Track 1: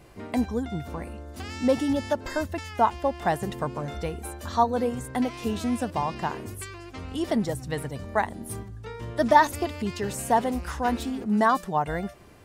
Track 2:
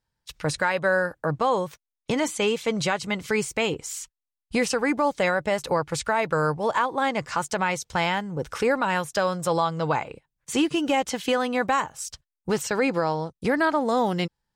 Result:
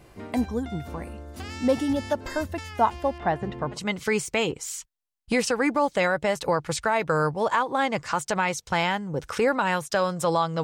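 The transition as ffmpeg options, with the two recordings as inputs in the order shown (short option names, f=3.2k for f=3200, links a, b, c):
-filter_complex "[0:a]asettb=1/sr,asplit=3[a][b][c];[a]atrim=end=3.184[d];[b]atrim=start=3.18:end=3.79,asetpts=PTS-STARTPTS,afade=t=in:d=0.004:c=qsin,afade=t=out:st=0.606:d=0.004:c=qsin,lowpass=2.8k[e];[c]atrim=start=3.786[f];[d][e]acrossfade=d=0.004:c1=hsin:c2=qsin[g];[g][f]acrossfade=d=0.004:c1=qsin:c2=hsin,apad=whole_dur=10.63,atrim=end=10.63,atrim=end=3.79,asetpts=PTS-STARTPTS[h];[1:a]atrim=start=2.94:end=9.86,asetpts=PTS-STARTPTS[i];[h][i]acrossfade=d=0.08:c1=tri:c2=tri"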